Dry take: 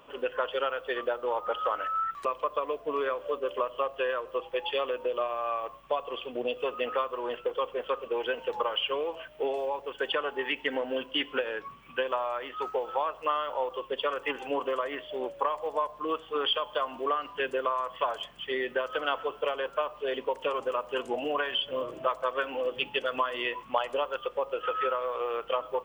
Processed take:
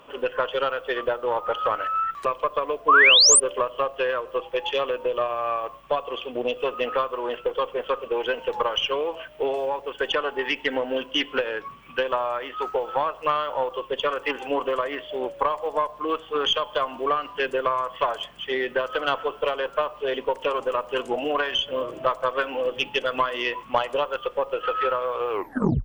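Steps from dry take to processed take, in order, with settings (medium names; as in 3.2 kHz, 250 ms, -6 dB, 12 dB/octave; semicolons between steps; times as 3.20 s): tape stop on the ending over 0.54 s; Chebyshev shaper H 4 -23 dB, 6 -43 dB, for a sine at -12.5 dBFS; painted sound rise, 2.88–3.40 s, 1–9.8 kHz -19 dBFS; trim +5 dB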